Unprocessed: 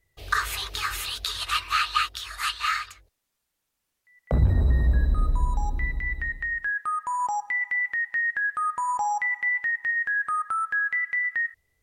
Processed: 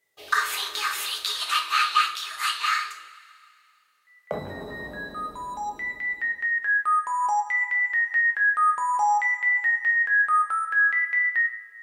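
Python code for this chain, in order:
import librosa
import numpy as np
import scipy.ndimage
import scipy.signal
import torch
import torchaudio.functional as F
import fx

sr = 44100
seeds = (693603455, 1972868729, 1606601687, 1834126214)

y = scipy.signal.sosfilt(scipy.signal.butter(2, 360.0, 'highpass', fs=sr, output='sos'), x)
y = fx.rev_double_slope(y, sr, seeds[0], early_s=0.41, late_s=2.5, knee_db=-19, drr_db=2.0)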